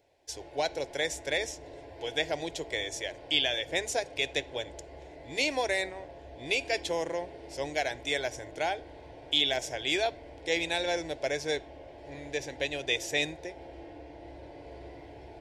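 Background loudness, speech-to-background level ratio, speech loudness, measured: −47.5 LKFS, 16.0 dB, −31.5 LKFS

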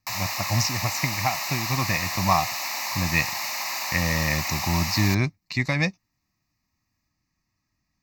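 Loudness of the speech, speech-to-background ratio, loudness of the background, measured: −26.0 LKFS, 1.5 dB, −27.5 LKFS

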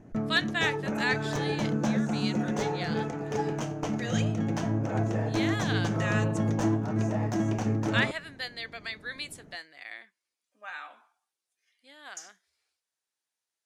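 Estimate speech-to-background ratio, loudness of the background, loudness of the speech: −5.0 dB, −29.5 LKFS, −34.5 LKFS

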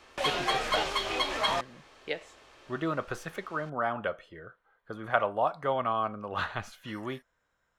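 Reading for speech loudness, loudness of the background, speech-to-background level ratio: −33.5 LKFS, −29.5 LKFS, −4.0 dB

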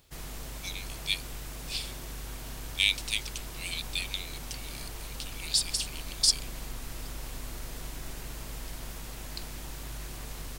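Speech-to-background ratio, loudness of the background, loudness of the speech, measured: 10.5 dB, −41.0 LKFS, −30.5 LKFS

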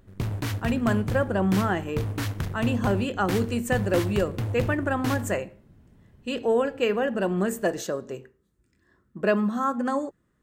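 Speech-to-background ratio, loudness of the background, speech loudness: 5.0 dB, −31.5 LKFS, −26.5 LKFS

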